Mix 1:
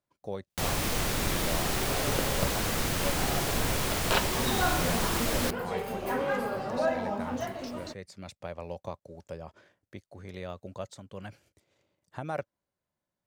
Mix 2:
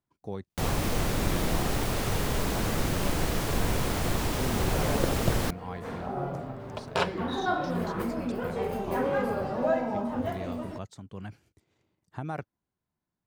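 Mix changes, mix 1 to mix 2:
speech: add peaking EQ 560 Hz -12 dB 0.37 oct; second sound: entry +2.85 s; master: add tilt shelf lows +4 dB, about 1.1 kHz

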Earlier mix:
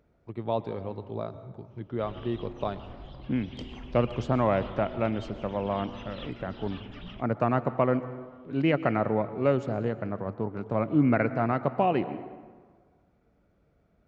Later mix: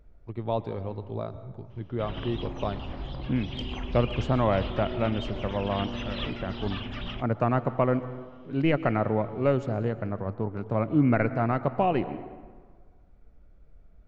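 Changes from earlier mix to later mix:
speech: remove high-pass 120 Hz 12 dB/octave; background +9.0 dB

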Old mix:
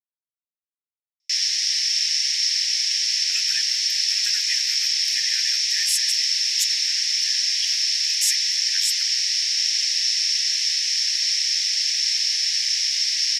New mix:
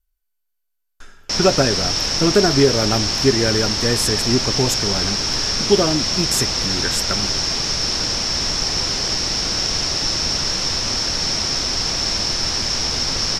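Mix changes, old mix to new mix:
speech: entry -1.90 s; master: remove steep high-pass 1.8 kHz 72 dB/octave

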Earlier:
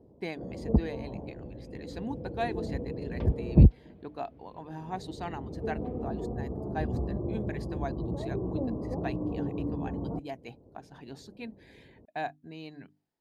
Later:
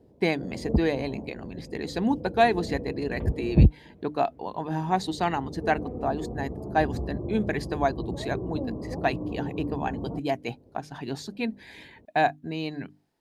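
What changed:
speech +12.0 dB; second sound: add distance through air 350 m

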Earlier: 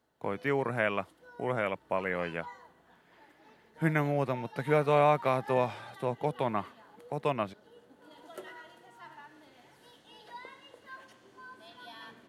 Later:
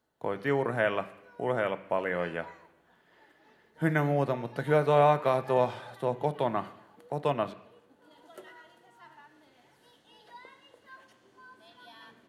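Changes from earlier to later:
speech: send on; background -3.5 dB

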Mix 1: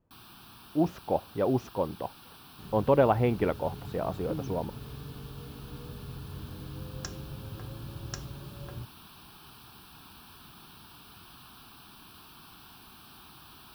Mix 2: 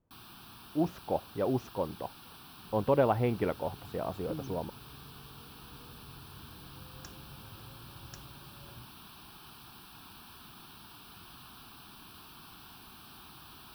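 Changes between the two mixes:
speech -3.5 dB; second sound -11.0 dB

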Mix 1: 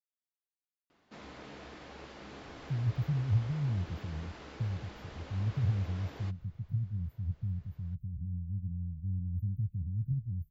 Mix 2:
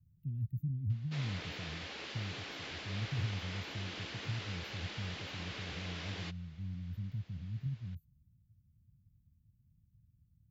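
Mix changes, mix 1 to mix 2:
speech: entry -2.45 s; master: add frequency weighting D

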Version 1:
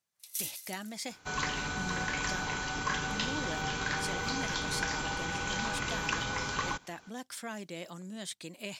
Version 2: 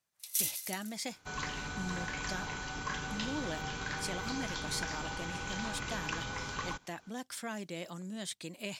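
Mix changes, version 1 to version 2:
first sound +4.5 dB; second sound -5.5 dB; master: add bass shelf 140 Hz +4 dB

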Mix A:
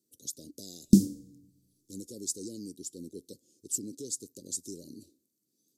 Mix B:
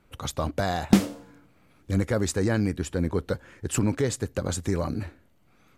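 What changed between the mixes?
speech: remove high-pass 570 Hz 12 dB/octave; master: remove inverse Chebyshev band-stop 890–2000 Hz, stop band 70 dB

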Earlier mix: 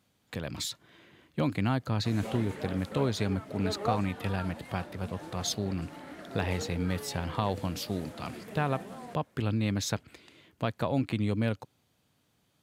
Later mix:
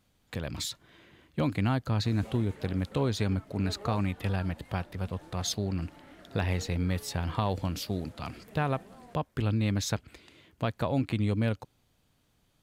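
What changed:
background -8.0 dB; master: remove high-pass 100 Hz

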